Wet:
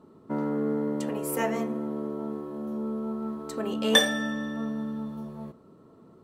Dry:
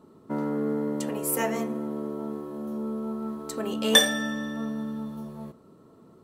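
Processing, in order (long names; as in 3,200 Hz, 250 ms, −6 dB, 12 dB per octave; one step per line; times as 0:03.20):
high-shelf EQ 4,900 Hz −8 dB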